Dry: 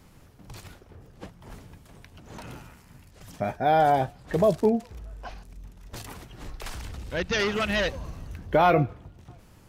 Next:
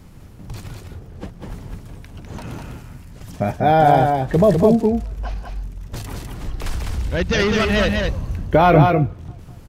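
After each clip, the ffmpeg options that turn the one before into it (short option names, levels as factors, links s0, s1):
-filter_complex "[0:a]lowshelf=f=310:g=8,asplit=2[s0][s1];[s1]aecho=0:1:178|202:0.126|0.631[s2];[s0][s2]amix=inputs=2:normalize=0,volume=1.68"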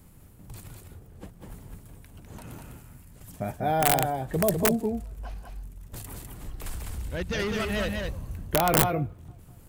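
-af "areverse,acompressor=mode=upward:threshold=0.0141:ratio=2.5,areverse,aeval=exprs='(mod(1.68*val(0)+1,2)-1)/1.68':c=same,aexciter=amount=4.6:drive=2.5:freq=7600,volume=0.282"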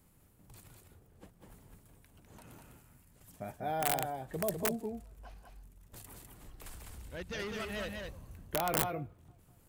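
-af "lowshelf=f=220:g=-6,volume=0.355"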